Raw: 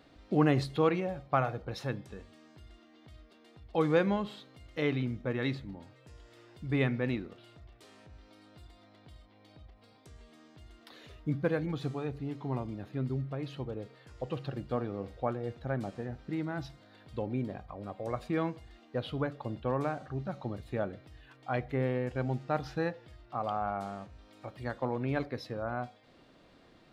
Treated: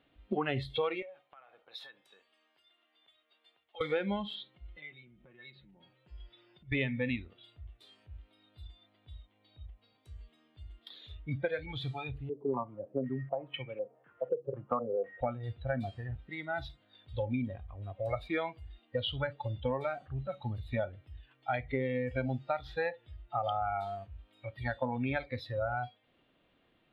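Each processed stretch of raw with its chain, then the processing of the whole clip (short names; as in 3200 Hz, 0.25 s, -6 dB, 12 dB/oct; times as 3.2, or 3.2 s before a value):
1.02–3.81 HPF 640 Hz + compressor 16:1, threshold -43 dBFS
4.35–6.72 LPF 4300 Hz + comb 5.5 ms, depth 72% + compressor 8:1, threshold -46 dBFS
12.29–15.21 HPF 140 Hz 24 dB/oct + stepped low-pass 4 Hz 450–2300 Hz
whole clip: spectral noise reduction 18 dB; resonant high shelf 4300 Hz -12 dB, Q 3; compressor 12:1, threshold -35 dBFS; gain +6.5 dB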